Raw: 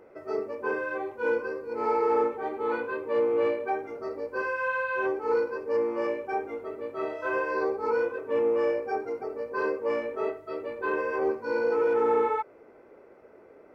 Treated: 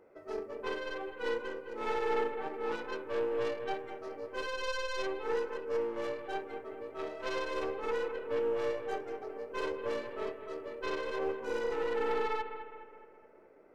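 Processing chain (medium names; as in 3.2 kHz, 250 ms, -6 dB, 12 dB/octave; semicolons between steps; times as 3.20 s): tracing distortion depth 0.24 ms; bucket-brigade echo 209 ms, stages 4096, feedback 49%, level -10 dB; trim -8 dB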